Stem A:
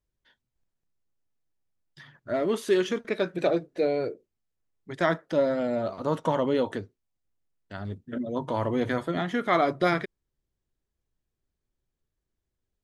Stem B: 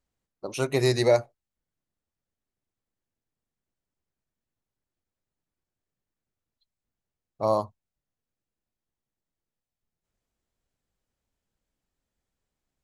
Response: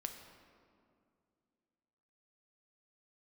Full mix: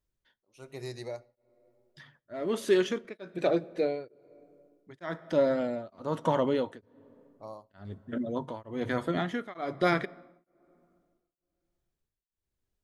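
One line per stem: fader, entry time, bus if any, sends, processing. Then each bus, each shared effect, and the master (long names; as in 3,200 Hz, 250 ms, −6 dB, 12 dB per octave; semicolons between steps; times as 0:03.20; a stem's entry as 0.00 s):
−2.0 dB, 0.00 s, send −13 dB, no processing
−19.0 dB, 0.00 s, send −7.5 dB, no processing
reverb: on, RT60 2.4 s, pre-delay 5 ms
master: tremolo along a rectified sine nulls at 1.1 Hz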